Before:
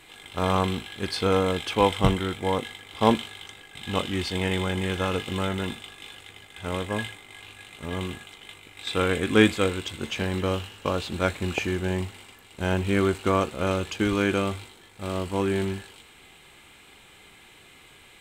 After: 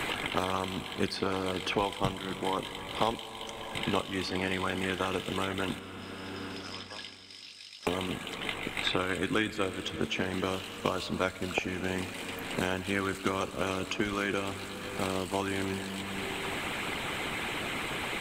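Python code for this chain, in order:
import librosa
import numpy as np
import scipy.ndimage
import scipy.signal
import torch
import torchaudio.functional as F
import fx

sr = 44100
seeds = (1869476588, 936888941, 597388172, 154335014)

y = fx.hpss(x, sr, part='harmonic', gain_db=-15)
y = fx.bandpass_q(y, sr, hz=5100.0, q=20.0, at=(5.79, 7.87))
y = fx.rev_schroeder(y, sr, rt60_s=2.3, comb_ms=28, drr_db=14.0)
y = fx.band_squash(y, sr, depth_pct=100)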